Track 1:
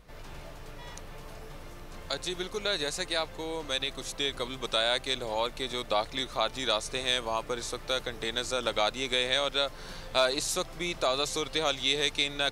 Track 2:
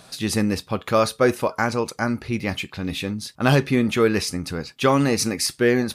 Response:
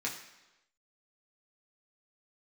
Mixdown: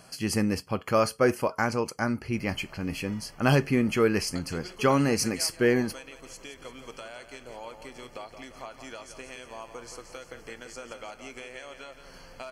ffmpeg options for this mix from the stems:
-filter_complex "[0:a]acompressor=threshold=0.0316:ratio=6,adelay=2250,volume=0.398,asplit=3[s0][s1][s2];[s1]volume=0.237[s3];[s2]volume=0.398[s4];[1:a]volume=0.596[s5];[2:a]atrim=start_sample=2205[s6];[s3][s6]afir=irnorm=-1:irlink=0[s7];[s4]aecho=0:1:172|344|516|688|860|1032|1204|1376:1|0.53|0.281|0.149|0.0789|0.0418|0.0222|0.0117[s8];[s0][s5][s7][s8]amix=inputs=4:normalize=0,asuperstop=centerf=3700:order=8:qfactor=4.5"

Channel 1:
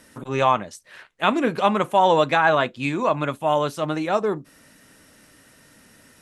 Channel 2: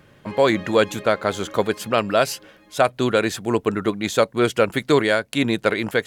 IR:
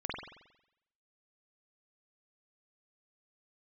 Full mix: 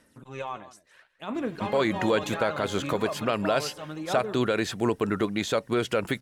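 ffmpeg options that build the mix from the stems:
-filter_complex "[0:a]alimiter=limit=0.266:level=0:latency=1:release=14,aphaser=in_gain=1:out_gain=1:delay=3:decay=0.47:speed=0.73:type=sinusoidal,volume=0.211,asplit=2[s0][s1];[s1]volume=0.158[s2];[1:a]acrossover=split=5600[s3][s4];[s4]acompressor=threshold=0.01:ratio=4:attack=1:release=60[s5];[s3][s5]amix=inputs=2:normalize=0,alimiter=limit=0.211:level=0:latency=1:release=75,adelay=1350,volume=0.891[s6];[s2]aecho=0:1:161:1[s7];[s0][s6][s7]amix=inputs=3:normalize=0"

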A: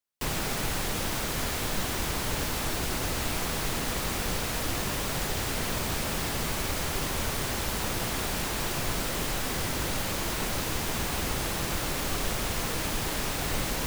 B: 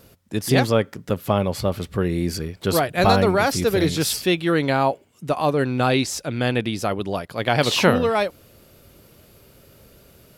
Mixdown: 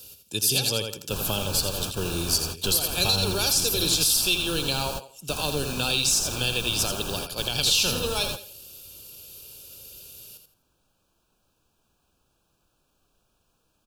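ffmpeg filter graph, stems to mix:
-filter_complex "[0:a]adelay=900,volume=0.75[s0];[1:a]aecho=1:1:2.2:0.32,aexciter=amount=6.5:drive=3.6:freq=2000,volume=0.398,asplit=3[s1][s2][s3];[s2]volume=0.422[s4];[s3]apad=whole_len=651192[s5];[s0][s5]sidechaingate=range=0.0126:threshold=0.02:ratio=16:detection=peak[s6];[s4]aecho=0:1:83|166|249|332:1|0.26|0.0676|0.0176[s7];[s6][s1][s7]amix=inputs=3:normalize=0,acrossover=split=210|3000[s8][s9][s10];[s9]acompressor=threshold=0.0316:ratio=2[s11];[s8][s11][s10]amix=inputs=3:normalize=0,asuperstop=centerf=2000:order=8:qfactor=2.8,alimiter=limit=0.282:level=0:latency=1:release=199"

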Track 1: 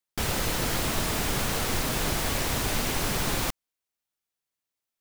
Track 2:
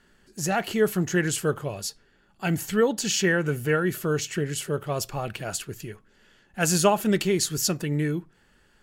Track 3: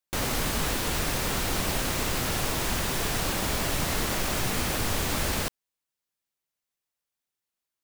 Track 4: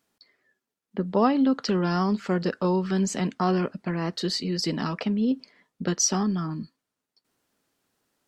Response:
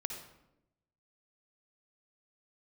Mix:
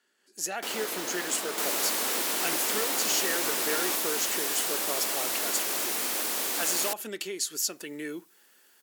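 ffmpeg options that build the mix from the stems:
-filter_complex "[0:a]adelay=450,volume=0.531[s0];[1:a]acompressor=threshold=0.0631:ratio=6,highshelf=f=2500:g=8.5,dynaudnorm=f=160:g=3:m=2.82,volume=0.211[s1];[2:a]acompressor=mode=upward:threshold=0.00501:ratio=2.5,aemphasis=mode=production:type=cd,adelay=1450,volume=0.596[s2];[s0][s1][s2]amix=inputs=3:normalize=0,highpass=f=280:w=0.5412,highpass=f=280:w=1.3066"

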